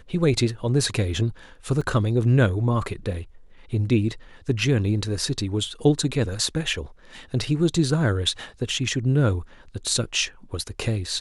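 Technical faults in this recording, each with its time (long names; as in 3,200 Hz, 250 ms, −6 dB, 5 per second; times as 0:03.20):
0:01.81: drop-out 2.8 ms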